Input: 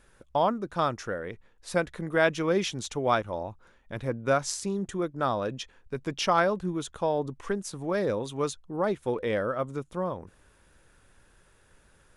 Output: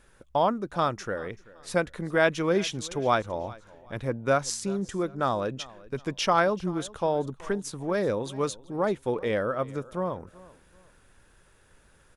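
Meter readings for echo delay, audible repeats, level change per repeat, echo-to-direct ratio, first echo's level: 384 ms, 2, -9.5 dB, -20.5 dB, -21.0 dB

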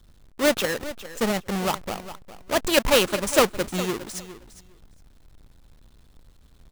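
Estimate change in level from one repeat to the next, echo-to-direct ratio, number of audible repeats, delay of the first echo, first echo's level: -16.5 dB, -14.5 dB, 2, 408 ms, -14.5 dB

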